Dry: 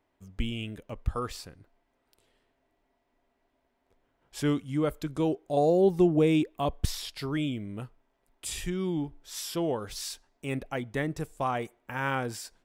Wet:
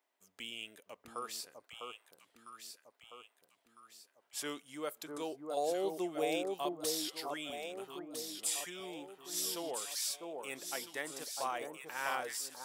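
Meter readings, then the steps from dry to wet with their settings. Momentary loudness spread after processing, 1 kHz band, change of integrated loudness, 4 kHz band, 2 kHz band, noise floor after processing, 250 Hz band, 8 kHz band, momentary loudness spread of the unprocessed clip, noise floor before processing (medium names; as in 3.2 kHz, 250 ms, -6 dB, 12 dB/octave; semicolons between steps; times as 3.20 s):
20 LU, -6.0 dB, -9.0 dB, -1.0 dB, -5.0 dB, -78 dBFS, -15.5 dB, +2.5 dB, 15 LU, -76 dBFS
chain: high-pass 530 Hz 12 dB/octave; treble shelf 4.2 kHz +11.5 dB; on a send: echo whose repeats swap between lows and highs 652 ms, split 1.2 kHz, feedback 65%, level -3 dB; on the sum: trim -7.5 dB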